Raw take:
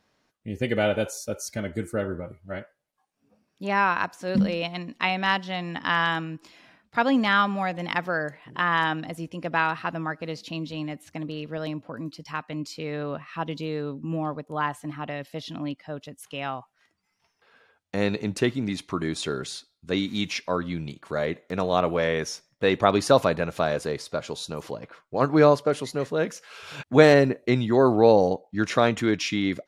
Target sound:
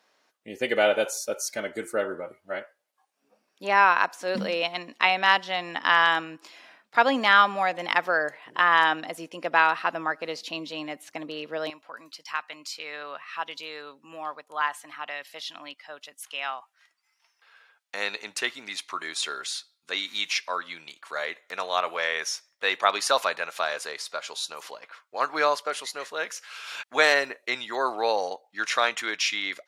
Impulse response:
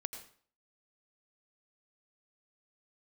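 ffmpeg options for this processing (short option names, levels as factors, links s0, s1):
-af "asetnsamples=n=441:p=0,asendcmd='11.7 highpass f 1100',highpass=470,volume=1.58"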